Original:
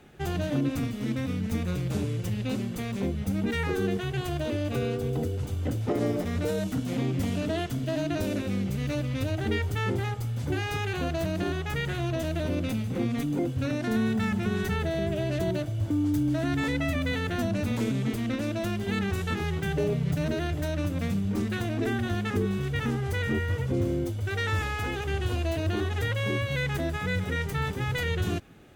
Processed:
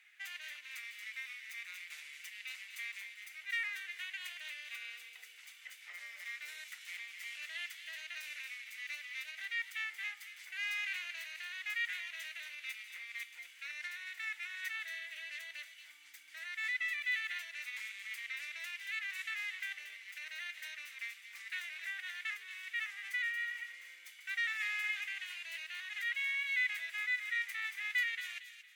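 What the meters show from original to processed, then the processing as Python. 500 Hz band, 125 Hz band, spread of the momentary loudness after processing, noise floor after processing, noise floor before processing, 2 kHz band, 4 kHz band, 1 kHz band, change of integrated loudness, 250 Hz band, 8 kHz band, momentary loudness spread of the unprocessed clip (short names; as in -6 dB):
under -40 dB, under -40 dB, 12 LU, -57 dBFS, -33 dBFS, -1.0 dB, -5.5 dB, -20.5 dB, -10.5 dB, under -40 dB, -8.5 dB, 3 LU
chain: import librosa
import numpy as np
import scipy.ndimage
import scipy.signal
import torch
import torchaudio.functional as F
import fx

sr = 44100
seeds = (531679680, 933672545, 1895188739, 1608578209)

p1 = fx.over_compress(x, sr, threshold_db=-30.0, ratio=-1.0)
p2 = x + (p1 * librosa.db_to_amplitude(-3.0))
p3 = fx.ladder_highpass(p2, sr, hz=1900.0, resonance_pct=70)
p4 = fx.echo_wet_highpass(p3, sr, ms=229, feedback_pct=32, hz=2600.0, wet_db=-7.0)
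y = p4 * librosa.db_to_amplitude(-2.5)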